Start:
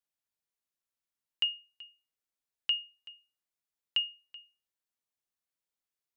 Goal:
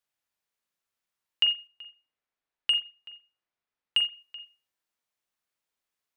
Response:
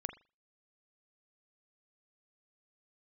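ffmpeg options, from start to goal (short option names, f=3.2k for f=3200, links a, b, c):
-filter_complex "[0:a]equalizer=f=1.5k:w=0.31:g=5,asettb=1/sr,asplit=3[a][b][c];[a]atrim=end=1.674[d];[b]atrim=start=1.67:end=4.12,asetpts=PTS-STARTPTS,afade=t=in:d=0.004:c=qsin,afade=t=out:st=2.446:d=0.004:c=qsin,adynamicsmooth=sensitivity=1:basefreq=4.2k[e];[c]atrim=start=4.116[f];[d][e]acrossfade=d=0.004:c1=hsin:c2=qsin[g];[g][f]acrossfade=d=0.004:c1=qsin:c2=hsin[h];[1:a]atrim=start_sample=2205[i];[h][i]afir=irnorm=-1:irlink=0,volume=4dB"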